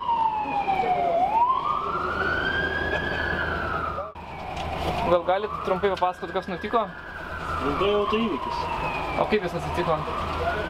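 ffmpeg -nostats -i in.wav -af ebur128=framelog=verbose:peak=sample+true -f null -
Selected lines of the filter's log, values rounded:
Integrated loudness:
  I:         -25.5 LUFS
  Threshold: -35.6 LUFS
Loudness range:
  LRA:         2.4 LU
  Threshold: -45.8 LUFS
  LRA low:   -26.7 LUFS
  LRA high:  -24.2 LUFS
Sample peak:
  Peak:       -7.3 dBFS
True peak:
  Peak:       -7.3 dBFS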